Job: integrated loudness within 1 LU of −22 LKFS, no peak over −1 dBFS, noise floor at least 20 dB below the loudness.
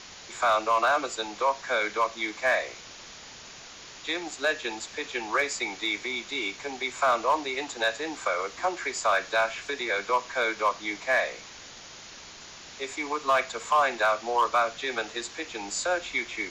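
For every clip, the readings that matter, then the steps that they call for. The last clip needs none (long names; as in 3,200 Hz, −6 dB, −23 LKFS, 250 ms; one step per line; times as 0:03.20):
share of clipped samples 0.4%; peaks flattened at −16.5 dBFS; background noise floor −46 dBFS; target noise floor −48 dBFS; integrated loudness −27.5 LKFS; sample peak −16.5 dBFS; target loudness −22.0 LKFS
→ clipped peaks rebuilt −16.5 dBFS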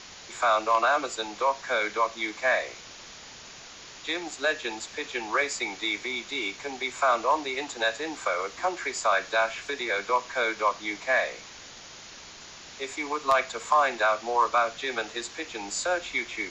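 share of clipped samples 0.0%; background noise floor −46 dBFS; target noise floor −48 dBFS
→ broadband denoise 6 dB, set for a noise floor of −46 dBFS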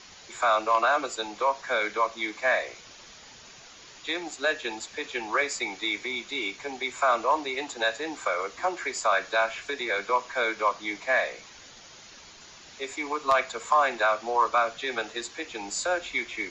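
background noise floor −49 dBFS; integrated loudness −27.5 LKFS; sample peak −7.5 dBFS; target loudness −22.0 LKFS
→ level +5.5 dB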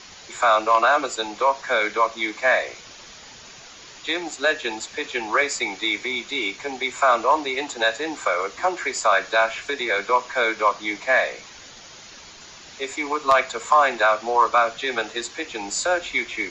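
integrated loudness −22.0 LKFS; sample peak −2.0 dBFS; background noise floor −44 dBFS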